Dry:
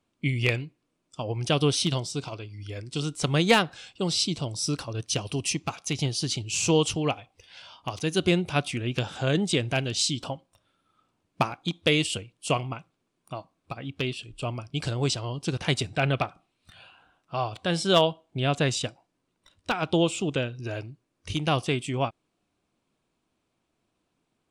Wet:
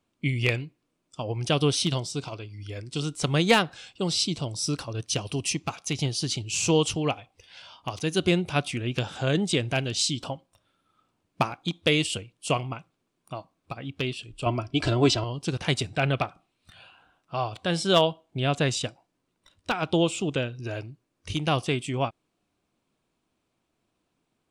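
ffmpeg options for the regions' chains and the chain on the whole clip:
-filter_complex "[0:a]asettb=1/sr,asplit=3[a][b][c];[a]atrim=end=14.464[d];[b]atrim=start=14.46:end=15.24,asetpts=PTS-STARTPTS,afade=t=in:d=0.004:c=qsin,afade=t=out:st=0.776:d=0.004:c=qsin,aemphasis=mode=reproduction:type=50fm,aecho=1:1:3:0.66,atrim=end_sample=34398,acontrast=48[e];[c]atrim=start=15.236[f];[d][e]acrossfade=d=0.004:c1=hsin:c2=qsin[g];[g][f]acrossfade=d=0.004:c1=qsin:c2=hsin"

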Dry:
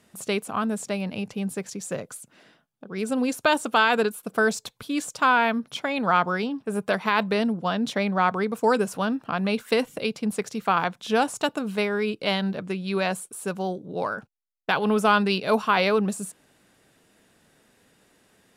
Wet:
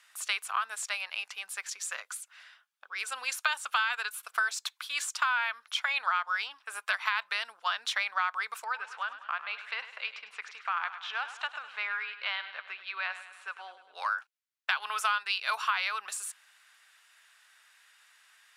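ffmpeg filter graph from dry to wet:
-filter_complex "[0:a]asettb=1/sr,asplit=3[a][b][c];[a]atrim=end=8.644[d];[b]atrim=start=8.64:end=13.95,asetpts=PTS-STARTPTS,afade=t=in:d=0.004:c=qsin,afade=t=out:st=5.306:d=0.004:c=qsin,lowpass=2.6k,acompressor=threshold=-28dB:ratio=2.5:attack=3.2:release=140:knee=1:detection=peak,aecho=1:1:102|204|306|408|510|612:0.224|0.128|0.0727|0.0415|0.0236|0.0135,atrim=end_sample=234171[e];[c]atrim=start=13.946[f];[d][e]acrossfade=d=0.004:c1=hsin:c2=qsin[g];[g][f]acrossfade=d=0.004:c1=qsin:c2=hsin,highpass=f=1.2k:w=0.5412,highpass=f=1.2k:w=1.3066,highshelf=f=6k:g=-8,acompressor=threshold=-31dB:ratio=6,volume=5.5dB"

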